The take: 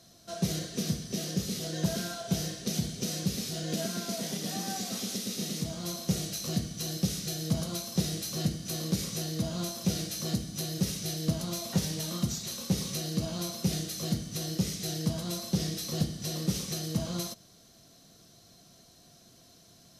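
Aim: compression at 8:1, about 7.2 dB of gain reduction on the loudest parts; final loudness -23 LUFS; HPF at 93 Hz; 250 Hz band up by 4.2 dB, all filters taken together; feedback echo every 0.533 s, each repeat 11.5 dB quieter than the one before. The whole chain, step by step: HPF 93 Hz; bell 250 Hz +7 dB; compressor 8:1, threshold -27 dBFS; feedback echo 0.533 s, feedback 27%, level -11.5 dB; gain +10 dB

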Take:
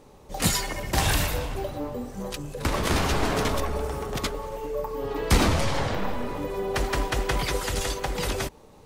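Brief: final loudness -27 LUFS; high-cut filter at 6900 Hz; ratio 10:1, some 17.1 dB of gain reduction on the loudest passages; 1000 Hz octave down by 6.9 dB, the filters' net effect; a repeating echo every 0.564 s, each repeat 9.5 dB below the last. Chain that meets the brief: LPF 6900 Hz; bell 1000 Hz -9 dB; compressor 10:1, threshold -33 dBFS; feedback echo 0.564 s, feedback 33%, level -9.5 dB; gain +11 dB

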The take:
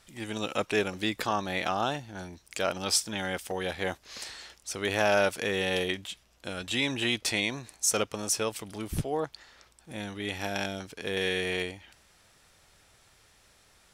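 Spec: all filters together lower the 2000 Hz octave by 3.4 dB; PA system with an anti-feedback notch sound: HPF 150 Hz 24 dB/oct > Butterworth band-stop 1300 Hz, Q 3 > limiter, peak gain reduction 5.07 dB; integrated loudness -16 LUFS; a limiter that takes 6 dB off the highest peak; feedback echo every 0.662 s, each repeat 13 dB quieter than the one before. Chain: bell 2000 Hz -3.5 dB; limiter -17 dBFS; HPF 150 Hz 24 dB/oct; Butterworth band-stop 1300 Hz, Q 3; feedback echo 0.662 s, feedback 22%, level -13 dB; gain +18.5 dB; limiter -3 dBFS

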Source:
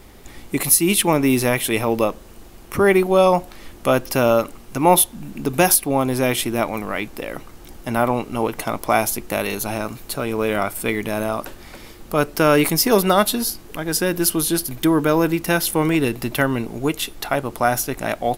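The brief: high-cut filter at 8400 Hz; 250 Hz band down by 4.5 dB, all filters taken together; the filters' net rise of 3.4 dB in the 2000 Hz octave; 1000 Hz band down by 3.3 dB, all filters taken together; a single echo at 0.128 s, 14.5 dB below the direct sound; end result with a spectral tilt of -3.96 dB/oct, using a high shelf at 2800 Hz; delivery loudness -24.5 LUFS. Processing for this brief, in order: LPF 8400 Hz; bell 250 Hz -6 dB; bell 1000 Hz -6 dB; bell 2000 Hz +5 dB; high shelf 2800 Hz +3.5 dB; echo 0.128 s -14.5 dB; gain -3.5 dB

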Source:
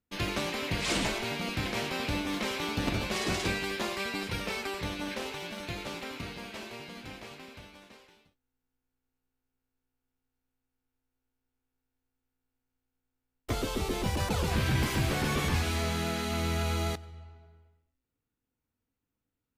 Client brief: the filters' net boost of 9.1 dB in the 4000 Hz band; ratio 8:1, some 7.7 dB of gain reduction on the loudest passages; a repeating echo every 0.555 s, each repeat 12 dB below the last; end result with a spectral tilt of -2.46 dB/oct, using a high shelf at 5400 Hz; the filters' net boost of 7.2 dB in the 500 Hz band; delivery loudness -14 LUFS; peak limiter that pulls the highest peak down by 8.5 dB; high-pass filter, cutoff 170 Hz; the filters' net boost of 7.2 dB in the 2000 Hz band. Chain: HPF 170 Hz; bell 500 Hz +9 dB; bell 2000 Hz +5.5 dB; bell 4000 Hz +7.5 dB; high shelf 5400 Hz +5 dB; compressor 8:1, threshold -28 dBFS; limiter -24 dBFS; feedback echo 0.555 s, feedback 25%, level -12 dB; gain +19 dB

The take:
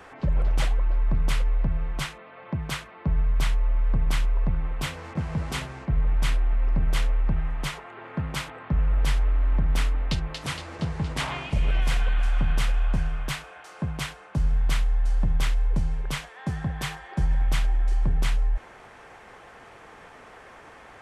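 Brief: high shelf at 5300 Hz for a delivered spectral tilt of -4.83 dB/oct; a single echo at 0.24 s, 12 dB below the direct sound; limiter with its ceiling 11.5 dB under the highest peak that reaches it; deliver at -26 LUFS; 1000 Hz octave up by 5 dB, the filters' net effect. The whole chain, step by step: bell 1000 Hz +6.5 dB; high shelf 5300 Hz -6.5 dB; limiter -23 dBFS; echo 0.24 s -12 dB; gain +7.5 dB

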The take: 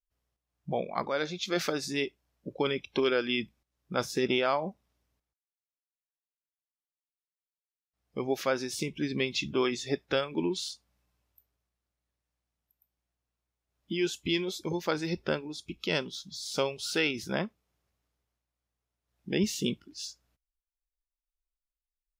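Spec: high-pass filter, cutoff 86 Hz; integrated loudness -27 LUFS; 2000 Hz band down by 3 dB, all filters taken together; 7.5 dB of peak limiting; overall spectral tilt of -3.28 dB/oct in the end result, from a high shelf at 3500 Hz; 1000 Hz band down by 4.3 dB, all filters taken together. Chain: HPF 86 Hz; bell 1000 Hz -5 dB; bell 2000 Hz -5.5 dB; high shelf 3500 Hz +7 dB; gain +6.5 dB; limiter -15 dBFS

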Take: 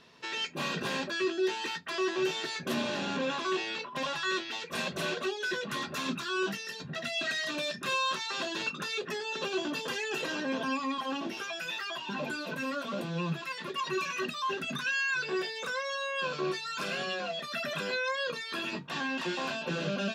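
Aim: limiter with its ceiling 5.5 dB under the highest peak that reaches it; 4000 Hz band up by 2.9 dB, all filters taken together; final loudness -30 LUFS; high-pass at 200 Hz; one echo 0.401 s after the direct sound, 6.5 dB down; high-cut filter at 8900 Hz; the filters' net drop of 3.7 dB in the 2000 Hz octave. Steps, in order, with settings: HPF 200 Hz; LPF 8900 Hz; bell 2000 Hz -7.5 dB; bell 4000 Hz +6 dB; limiter -25.5 dBFS; echo 0.401 s -6.5 dB; gain +3.5 dB

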